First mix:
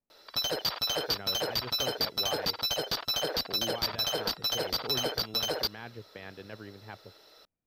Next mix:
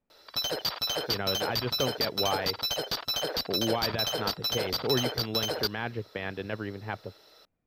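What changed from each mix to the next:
speech +10.0 dB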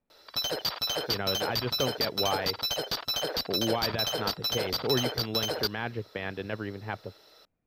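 nothing changed

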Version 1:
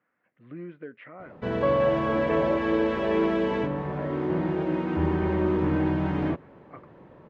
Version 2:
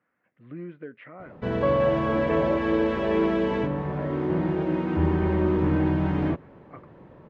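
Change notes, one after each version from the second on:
master: add low-shelf EQ 170 Hz +5 dB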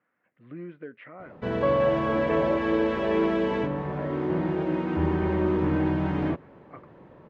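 master: add low-shelf EQ 170 Hz −5 dB

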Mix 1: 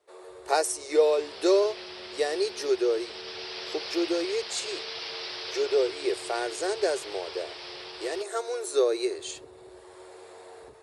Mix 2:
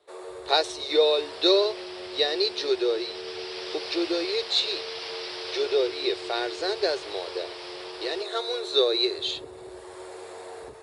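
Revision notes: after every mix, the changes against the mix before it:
speech: add low-pass with resonance 3,800 Hz, resonance Q 8.2
first sound +6.5 dB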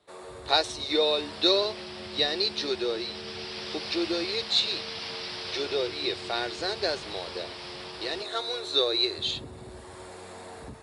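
master: add low shelf with overshoot 300 Hz +9 dB, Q 3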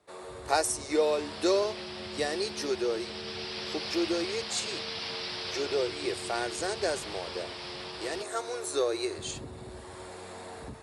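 speech: remove low-pass with resonance 3,800 Hz, resonance Q 8.2

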